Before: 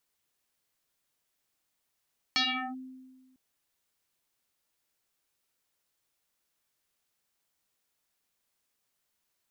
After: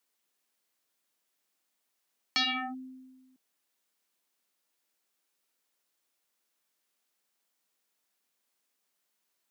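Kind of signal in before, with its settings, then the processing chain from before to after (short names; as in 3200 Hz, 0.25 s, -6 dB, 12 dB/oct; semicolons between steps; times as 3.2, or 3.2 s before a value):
FM tone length 1.00 s, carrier 259 Hz, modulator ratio 1.98, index 10, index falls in 0.39 s linear, decay 1.49 s, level -22 dB
HPF 180 Hz 24 dB/oct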